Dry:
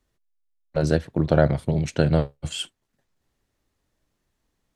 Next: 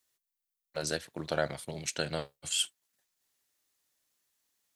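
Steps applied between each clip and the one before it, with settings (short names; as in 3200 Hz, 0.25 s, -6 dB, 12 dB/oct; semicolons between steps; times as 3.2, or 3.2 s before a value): tilt +4.5 dB/oct; gain -8 dB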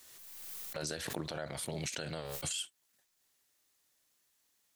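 compressor 10:1, threshold -36 dBFS, peak gain reduction 13 dB; limiter -29.5 dBFS, peak gain reduction 8 dB; backwards sustainer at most 27 dB/s; gain +3 dB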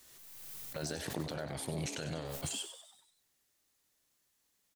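low shelf 320 Hz +6.5 dB; frequency-shifting echo 96 ms, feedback 53%, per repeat +130 Hz, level -10.5 dB; gain -2.5 dB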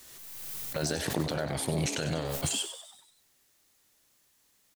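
companded quantiser 8-bit; gain +8 dB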